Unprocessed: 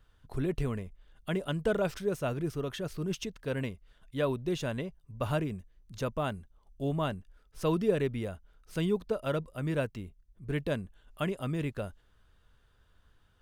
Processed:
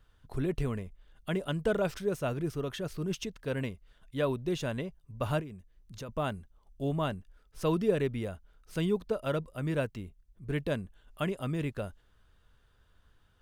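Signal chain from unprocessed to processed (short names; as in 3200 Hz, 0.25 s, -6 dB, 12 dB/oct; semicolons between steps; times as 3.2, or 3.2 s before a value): 5.4–6.09 compressor 2.5:1, threshold -44 dBFS, peak gain reduction 11 dB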